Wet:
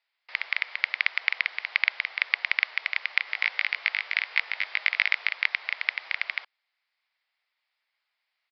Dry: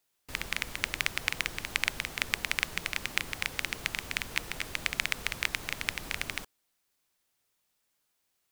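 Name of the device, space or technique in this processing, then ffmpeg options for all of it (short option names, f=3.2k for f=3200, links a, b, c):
musical greeting card: -filter_complex "[0:a]aresample=11025,aresample=44100,highpass=f=670:w=0.5412,highpass=f=670:w=1.3066,equalizer=f=2.1k:t=o:w=0.44:g=9.5,asplit=3[a][b][c];[a]afade=t=out:st=3.26:d=0.02[d];[b]asplit=2[e][f];[f]adelay=19,volume=-3dB[g];[e][g]amix=inputs=2:normalize=0,afade=t=in:st=3.26:d=0.02,afade=t=out:st=5.28:d=0.02[h];[c]afade=t=in:st=5.28:d=0.02[i];[d][h][i]amix=inputs=3:normalize=0"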